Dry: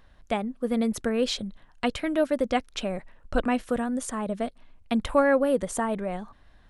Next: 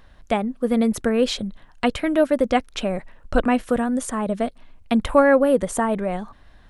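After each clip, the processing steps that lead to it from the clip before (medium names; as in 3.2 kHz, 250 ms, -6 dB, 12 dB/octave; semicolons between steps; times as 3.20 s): dynamic bell 5.1 kHz, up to -4 dB, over -44 dBFS, Q 0.76; trim +6 dB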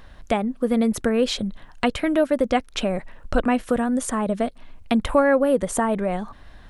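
compression 1.5:1, threshold -32 dBFS, peak gain reduction 8 dB; trim +5 dB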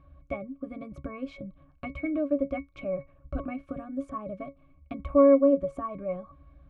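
pitch-class resonator C#, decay 0.14 s; trim +2 dB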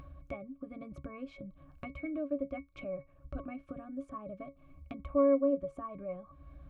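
upward compressor, threshold -31 dBFS; trim -8 dB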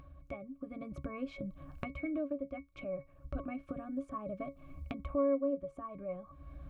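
recorder AGC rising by 7.5 dB/s; trim -4.5 dB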